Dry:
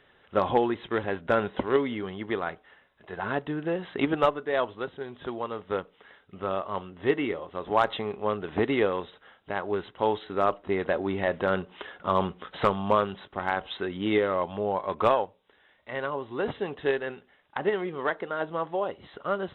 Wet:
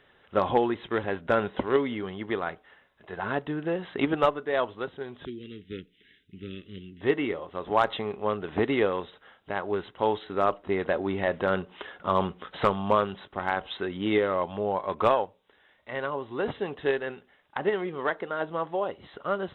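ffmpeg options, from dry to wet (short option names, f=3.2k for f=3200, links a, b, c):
-filter_complex "[0:a]asettb=1/sr,asplit=3[a][b][c];[a]atrim=end=5.254[d];[b]atrim=start=5.25:end=7.01,asetpts=PTS-STARTPTS,afade=t=in:d=0.004:c=qsin,afade=t=out:st=1.756:d=0.004:c=qsin,asuperstop=centerf=850:order=8:qfactor=0.52[e];[c]atrim=start=7.006[f];[d][e]acrossfade=d=0.004:c1=hsin:c2=qsin[g];[g][f]acrossfade=d=0.004:c1=qsin:c2=hsin"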